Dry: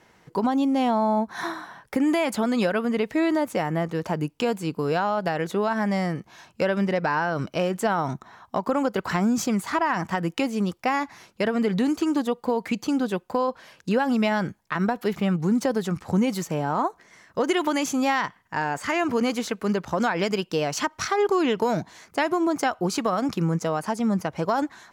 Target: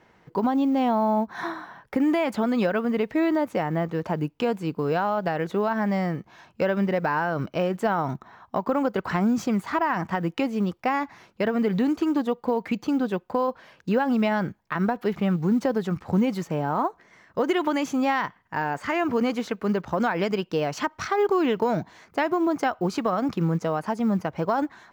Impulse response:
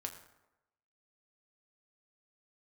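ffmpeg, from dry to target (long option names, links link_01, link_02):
-af "acrusher=bits=8:mode=log:mix=0:aa=0.000001,equalizer=frequency=10000:width_type=o:width=1.9:gain=-13"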